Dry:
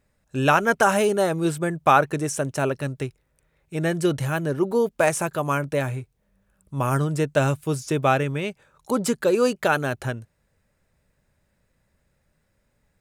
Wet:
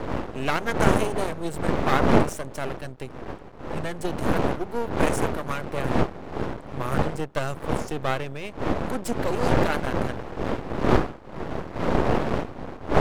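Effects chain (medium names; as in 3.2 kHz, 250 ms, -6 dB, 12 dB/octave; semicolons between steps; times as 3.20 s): wind noise 530 Hz -19 dBFS; half-wave rectifier; trim -3.5 dB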